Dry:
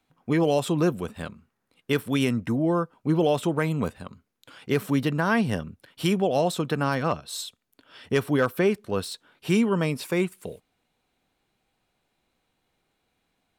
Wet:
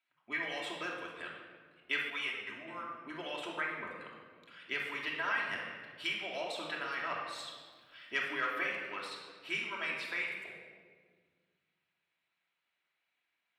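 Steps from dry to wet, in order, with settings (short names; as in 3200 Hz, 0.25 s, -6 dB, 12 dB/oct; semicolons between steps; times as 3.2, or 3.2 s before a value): 3.6–4.01 formant sharpening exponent 1.5; band-pass 2200 Hz, Q 1.7; harmonic-percussive split harmonic -12 dB; 7.25–8.19 crackle 260/s -65 dBFS; shoebox room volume 1900 m³, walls mixed, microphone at 2.9 m; 2.1–2.68 ensemble effect; gain -2.5 dB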